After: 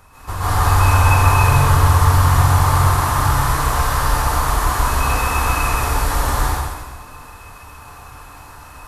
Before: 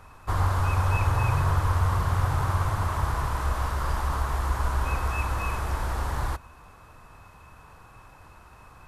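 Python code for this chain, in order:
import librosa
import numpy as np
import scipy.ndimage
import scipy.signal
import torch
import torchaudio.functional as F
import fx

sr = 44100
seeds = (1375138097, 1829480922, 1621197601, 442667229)

p1 = fx.high_shelf(x, sr, hz=5400.0, db=10.0)
p2 = p1 + fx.echo_single(p1, sr, ms=132, db=-6.0, dry=0)
y = fx.rev_plate(p2, sr, seeds[0], rt60_s=1.3, hf_ratio=0.95, predelay_ms=115, drr_db=-10.0)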